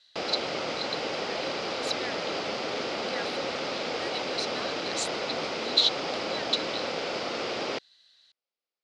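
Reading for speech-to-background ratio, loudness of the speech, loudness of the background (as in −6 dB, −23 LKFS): −1.0 dB, −32.5 LKFS, −31.5 LKFS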